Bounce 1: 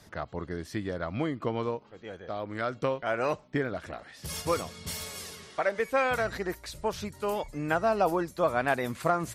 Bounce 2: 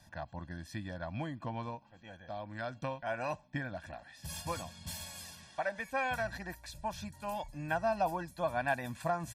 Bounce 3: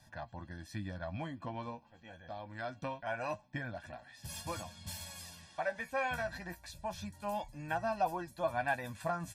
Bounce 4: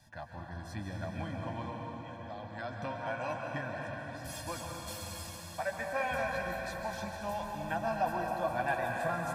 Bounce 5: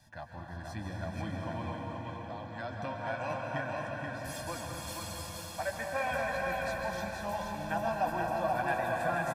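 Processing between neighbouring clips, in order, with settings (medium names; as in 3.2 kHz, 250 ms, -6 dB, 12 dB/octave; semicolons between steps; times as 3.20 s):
comb 1.2 ms, depth 93%; trim -9 dB
flange 0.25 Hz, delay 7.9 ms, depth 5.1 ms, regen +44%; trim +2.5 dB
reverberation RT60 4.6 s, pre-delay 122 ms, DRR 0 dB
delay 480 ms -4 dB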